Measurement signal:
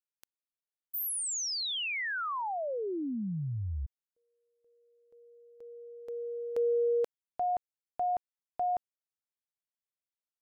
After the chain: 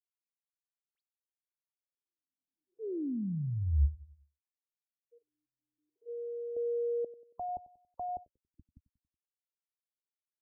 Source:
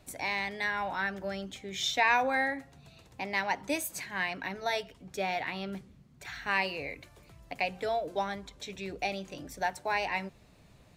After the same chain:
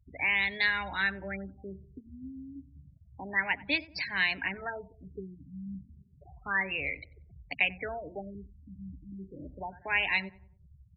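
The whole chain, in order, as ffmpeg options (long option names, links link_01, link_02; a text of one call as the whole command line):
ffmpeg -i in.wav -filter_complex "[0:a]acrossover=split=380|1300[link_01][link_02][link_03];[link_02]acompressor=threshold=-45dB:ratio=4:attack=3.3:release=229:knee=1:detection=rms[link_04];[link_01][link_04][link_03]amix=inputs=3:normalize=0,equalizer=frequency=72:width_type=o:width=0.36:gain=12.5,afftfilt=real='re*gte(hypot(re,im),0.00891)':imag='im*gte(hypot(re,im),0.00891)':win_size=1024:overlap=0.75,acontrast=37,tiltshelf=frequency=1500:gain=-6,asplit=2[link_05][link_06];[link_06]adelay=93,lowpass=frequency=1200:poles=1,volume=-18dB,asplit=2[link_07][link_08];[link_08]adelay=93,lowpass=frequency=1200:poles=1,volume=0.47,asplit=2[link_09][link_10];[link_10]adelay=93,lowpass=frequency=1200:poles=1,volume=0.47,asplit=2[link_11][link_12];[link_12]adelay=93,lowpass=frequency=1200:poles=1,volume=0.47[link_13];[link_05][link_07][link_09][link_11][link_13]amix=inputs=5:normalize=0,afftfilt=real='re*lt(b*sr/1024,280*pow(5700/280,0.5+0.5*sin(2*PI*0.31*pts/sr)))':imag='im*lt(b*sr/1024,280*pow(5700/280,0.5+0.5*sin(2*PI*0.31*pts/sr)))':win_size=1024:overlap=0.75" out.wav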